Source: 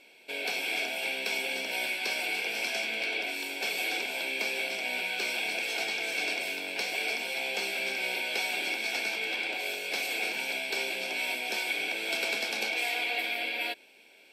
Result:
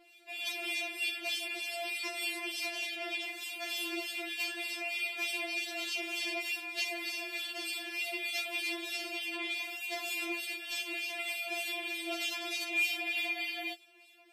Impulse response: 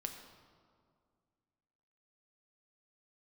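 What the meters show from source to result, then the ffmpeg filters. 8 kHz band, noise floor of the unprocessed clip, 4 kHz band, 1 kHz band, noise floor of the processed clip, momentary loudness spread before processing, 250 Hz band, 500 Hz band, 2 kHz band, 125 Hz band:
-3.5 dB, -57 dBFS, -3.5 dB, -6.5 dB, -59 dBFS, 2 LU, 0.0 dB, -6.5 dB, -5.0 dB, no reading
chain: -filter_complex "[0:a]acrossover=split=2100[s0][s1];[s0]aeval=exprs='val(0)*(1-0.7/2+0.7/2*cos(2*PI*3.3*n/s))':c=same[s2];[s1]aeval=exprs='val(0)*(1-0.7/2-0.7/2*cos(2*PI*3.3*n/s))':c=same[s3];[s2][s3]amix=inputs=2:normalize=0,afftfilt=real='re*4*eq(mod(b,16),0)':imag='im*4*eq(mod(b,16),0)':win_size=2048:overlap=0.75,volume=1.41"

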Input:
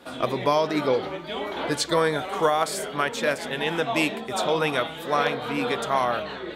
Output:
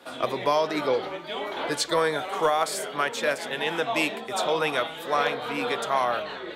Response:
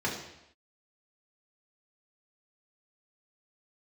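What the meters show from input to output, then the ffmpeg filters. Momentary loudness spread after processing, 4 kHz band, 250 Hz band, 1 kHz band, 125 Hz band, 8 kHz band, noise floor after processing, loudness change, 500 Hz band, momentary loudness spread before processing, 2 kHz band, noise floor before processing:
6 LU, -0.5 dB, -4.5 dB, -1.0 dB, -7.5 dB, -0.5 dB, -38 dBFS, -1.5 dB, -1.5 dB, 6 LU, -0.5 dB, -37 dBFS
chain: -filter_complex "[0:a]highpass=62,acrossover=split=360[s0][s1];[s1]acontrast=89[s2];[s0][s2]amix=inputs=2:normalize=0,volume=0.422"

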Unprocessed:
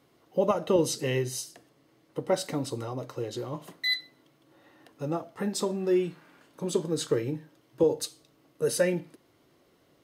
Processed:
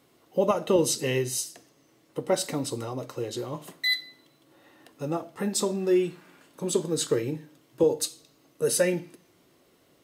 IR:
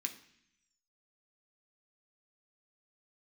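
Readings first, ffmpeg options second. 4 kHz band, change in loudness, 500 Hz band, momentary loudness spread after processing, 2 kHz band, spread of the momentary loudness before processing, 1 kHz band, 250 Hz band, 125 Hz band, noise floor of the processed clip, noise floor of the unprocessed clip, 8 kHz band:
+2.5 dB, +2.0 dB, +1.5 dB, 11 LU, +2.5 dB, 11 LU, +1.5 dB, +1.5 dB, 0.0 dB, -63 dBFS, -65 dBFS, +6.0 dB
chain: -filter_complex "[0:a]asplit=2[s0][s1];[1:a]atrim=start_sample=2205,highshelf=f=3000:g=11.5[s2];[s1][s2]afir=irnorm=-1:irlink=0,volume=0.251[s3];[s0][s3]amix=inputs=2:normalize=0,volume=1.12"

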